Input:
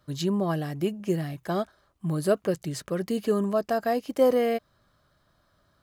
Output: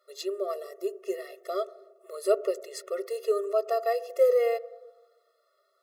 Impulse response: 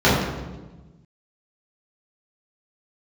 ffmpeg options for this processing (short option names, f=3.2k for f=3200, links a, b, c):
-filter_complex "[0:a]asettb=1/sr,asplit=3[a][b][c];[a]atrim=end=0.544[d];[b]atrim=start=0.54:end=1.04,asetpts=PTS-STARTPTS,afade=t=in:d=0.004:c=qsin,afade=t=out:st=0.496:d=0.004:c=qsin,equalizer=f=2.5k:w=1.3:g=-9.5[e];[c]atrim=start=1.036[f];[d][e]acrossfade=d=0.004:c1=hsin:c2=qsin[g];[g][f]acrossfade=d=0.004:c1=qsin:c2=hsin,asplit=2[h][i];[1:a]atrim=start_sample=2205,lowpass=2.2k,adelay=12[j];[i][j]afir=irnorm=-1:irlink=0,volume=-41dB[k];[h][k]amix=inputs=2:normalize=0,afftfilt=real='re*eq(mod(floor(b*sr/1024/360),2),1)':imag='im*eq(mod(floor(b*sr/1024/360),2),1)':win_size=1024:overlap=0.75"